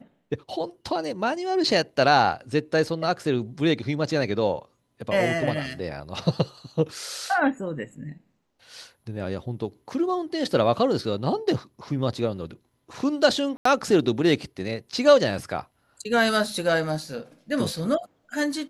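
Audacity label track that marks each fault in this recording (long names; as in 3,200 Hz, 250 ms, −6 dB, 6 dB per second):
13.570000	13.650000	drop-out 84 ms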